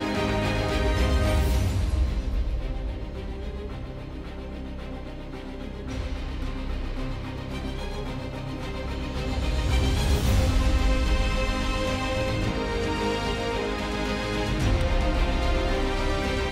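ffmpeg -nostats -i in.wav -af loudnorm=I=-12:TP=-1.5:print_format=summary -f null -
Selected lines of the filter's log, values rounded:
Input Integrated:    -27.6 LUFS
Input True Peak:     -12.5 dBTP
Input LRA:             8.6 LU
Input Threshold:     -37.7 LUFS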